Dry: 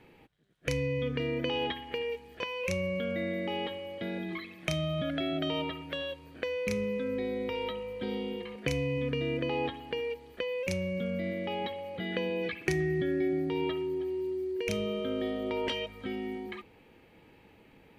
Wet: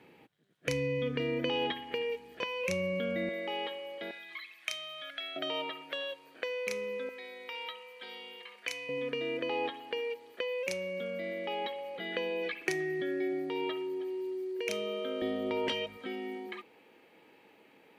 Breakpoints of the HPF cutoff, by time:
150 Hz
from 3.29 s 460 Hz
from 4.11 s 1500 Hz
from 5.36 s 500 Hz
from 7.09 s 1100 Hz
from 8.89 s 380 Hz
from 15.22 s 120 Hz
from 15.97 s 310 Hz

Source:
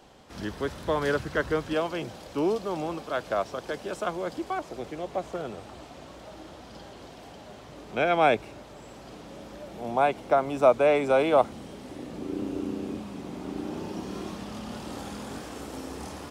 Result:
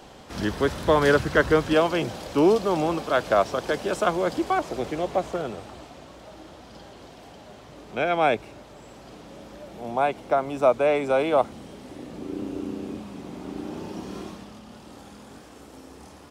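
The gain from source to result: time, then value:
5.01 s +7.5 dB
6.06 s 0 dB
14.2 s 0 dB
14.62 s -7.5 dB

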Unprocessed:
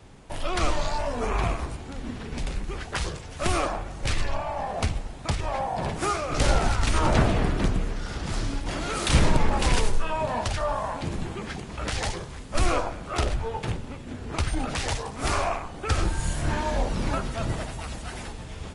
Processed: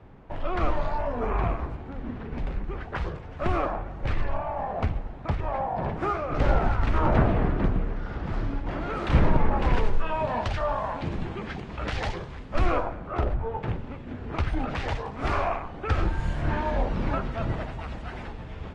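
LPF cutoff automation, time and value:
9.7 s 1700 Hz
10.19 s 3100 Hz
12.29 s 3100 Hz
13.36 s 1200 Hz
13.84 s 2400 Hz

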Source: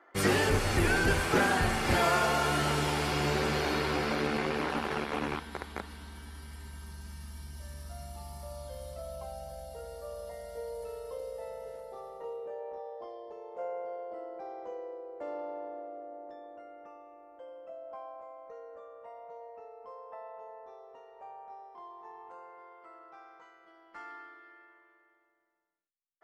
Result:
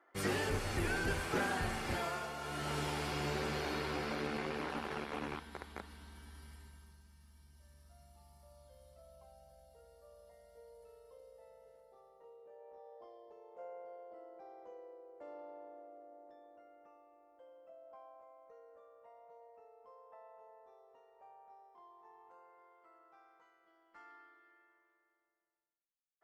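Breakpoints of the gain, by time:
1.79 s -9 dB
2.35 s -16.5 dB
2.77 s -8 dB
6.49 s -8 dB
7.08 s -18 dB
12.37 s -18 dB
12.97 s -11.5 dB

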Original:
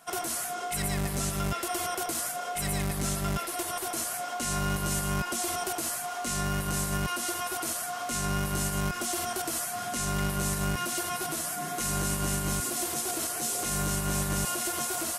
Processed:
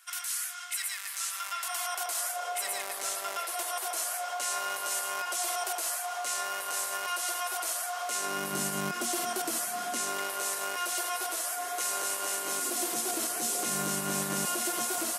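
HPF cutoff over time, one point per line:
HPF 24 dB/oct
1.05 s 1400 Hz
2.45 s 520 Hz
8.01 s 520 Hz
8.57 s 190 Hz
9.75 s 190 Hz
10.31 s 440 Hz
12.33 s 440 Hz
13.01 s 190 Hz

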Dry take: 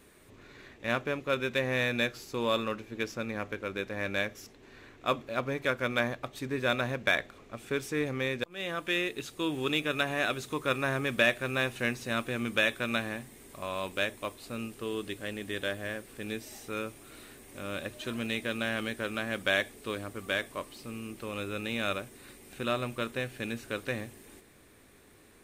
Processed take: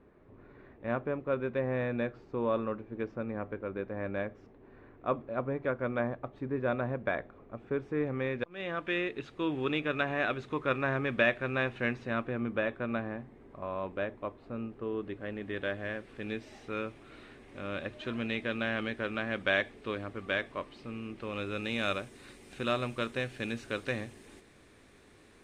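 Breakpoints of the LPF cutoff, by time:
7.83 s 1100 Hz
8.56 s 2300 Hz
11.96 s 2300 Hz
12.43 s 1200 Hz
14.91 s 1200 Hz
16.02 s 3000 Hz
21.15 s 3000 Hz
21.79 s 6800 Hz

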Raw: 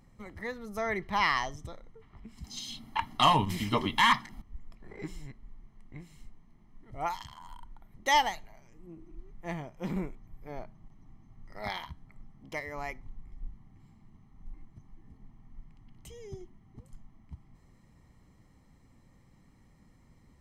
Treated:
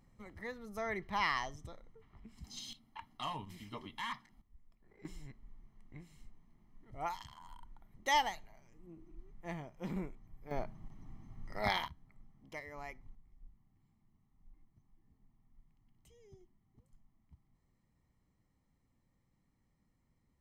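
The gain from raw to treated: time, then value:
-6.5 dB
from 2.73 s -18 dB
from 5.05 s -6 dB
from 10.51 s +3 dB
from 11.88 s -9 dB
from 13.15 s -16 dB

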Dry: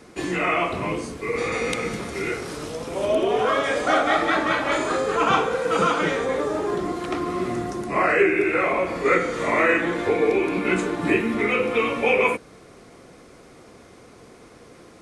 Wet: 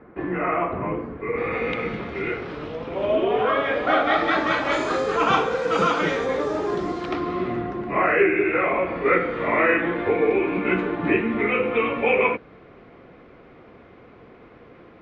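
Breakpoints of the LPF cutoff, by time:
LPF 24 dB/oct
1.08 s 1800 Hz
1.8 s 3200 Hz
3.81 s 3200 Hz
4.54 s 6200 Hz
6.88 s 6200 Hz
7.68 s 2900 Hz

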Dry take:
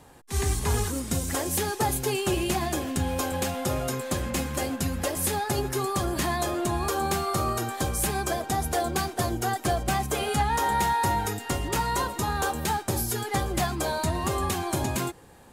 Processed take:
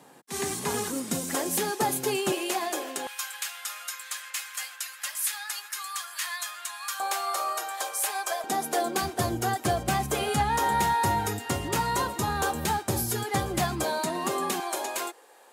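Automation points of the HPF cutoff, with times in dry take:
HPF 24 dB/oct
160 Hz
from 2.32 s 370 Hz
from 3.07 s 1300 Hz
from 7 s 600 Hz
from 8.44 s 220 Hz
from 9.02 s 76 Hz
from 13.84 s 200 Hz
from 14.6 s 430 Hz

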